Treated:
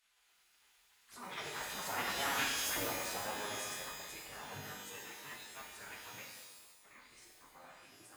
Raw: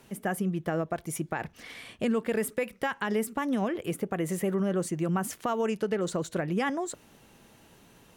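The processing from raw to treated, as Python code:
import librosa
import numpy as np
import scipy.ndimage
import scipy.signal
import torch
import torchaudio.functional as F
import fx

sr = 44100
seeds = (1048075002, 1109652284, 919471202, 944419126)

y = x[::-1].copy()
y = fx.doppler_pass(y, sr, speed_mps=37, closest_m=12.0, pass_at_s=2.4)
y = fx.pitch_keep_formants(y, sr, semitones=-9.0)
y = 10.0 ** (-33.0 / 20.0) * np.tanh(y / 10.0 ** (-33.0 / 20.0))
y = scipy.signal.sosfilt(scipy.signal.butter(4, 44.0, 'highpass', fs=sr, output='sos'), y)
y = fx.high_shelf(y, sr, hz=6300.0, db=-7.5)
y = fx.hum_notches(y, sr, base_hz=50, count=6)
y = fx.spec_gate(y, sr, threshold_db=-15, keep='weak')
y = fx.rev_shimmer(y, sr, seeds[0], rt60_s=1.0, semitones=12, shimmer_db=-2, drr_db=-1.0)
y = y * librosa.db_to_amplitude(8.5)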